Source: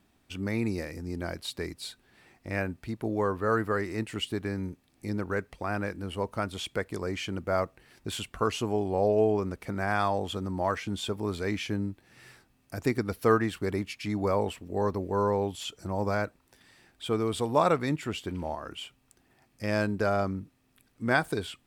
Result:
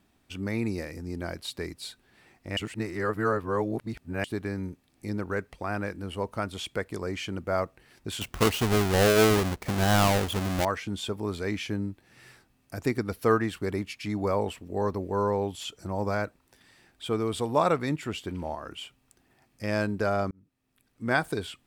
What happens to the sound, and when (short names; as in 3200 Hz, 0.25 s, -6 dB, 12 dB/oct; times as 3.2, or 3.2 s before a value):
2.57–4.24 reverse
8.21–10.65 half-waves squared off
20.31–21.18 fade in